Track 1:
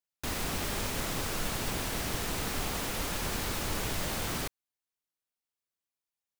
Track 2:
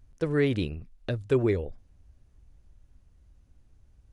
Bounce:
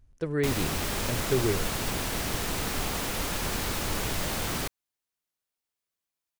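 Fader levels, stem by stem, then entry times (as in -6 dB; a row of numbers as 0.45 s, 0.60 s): +3.0 dB, -3.0 dB; 0.20 s, 0.00 s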